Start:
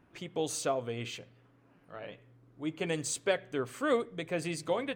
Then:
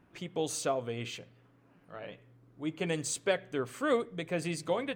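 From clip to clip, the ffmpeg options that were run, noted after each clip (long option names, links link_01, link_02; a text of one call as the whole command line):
ffmpeg -i in.wav -af "equalizer=frequency=180:width=6.5:gain=4" out.wav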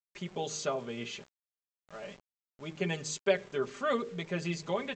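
ffmpeg -i in.wav -af "aecho=1:1:5:0.87,bandreject=frequency=51.75:width_type=h:width=4,bandreject=frequency=103.5:width_type=h:width=4,bandreject=frequency=155.25:width_type=h:width=4,bandreject=frequency=207:width_type=h:width=4,bandreject=frequency=258.75:width_type=h:width=4,bandreject=frequency=310.5:width_type=h:width=4,bandreject=frequency=362.25:width_type=h:width=4,bandreject=frequency=414:width_type=h:width=4,bandreject=frequency=465.75:width_type=h:width=4,bandreject=frequency=517.5:width_type=h:width=4,aresample=16000,aeval=exprs='val(0)*gte(abs(val(0)),0.00376)':channel_layout=same,aresample=44100,volume=-2dB" out.wav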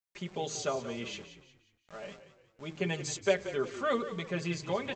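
ffmpeg -i in.wav -filter_complex "[0:a]asplit=5[link_01][link_02][link_03][link_04][link_05];[link_02]adelay=179,afreqshift=-33,volume=-12.5dB[link_06];[link_03]adelay=358,afreqshift=-66,volume=-20.7dB[link_07];[link_04]adelay=537,afreqshift=-99,volume=-28.9dB[link_08];[link_05]adelay=716,afreqshift=-132,volume=-37dB[link_09];[link_01][link_06][link_07][link_08][link_09]amix=inputs=5:normalize=0" out.wav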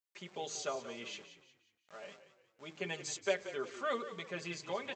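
ffmpeg -i in.wav -af "highpass=frequency=480:poles=1,volume=-3.5dB" out.wav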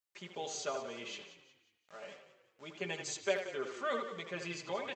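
ffmpeg -i in.wav -filter_complex "[0:a]asplit=2[link_01][link_02];[link_02]adelay=80,highpass=300,lowpass=3400,asoftclip=type=hard:threshold=-26.5dB,volume=-6dB[link_03];[link_01][link_03]amix=inputs=2:normalize=0" out.wav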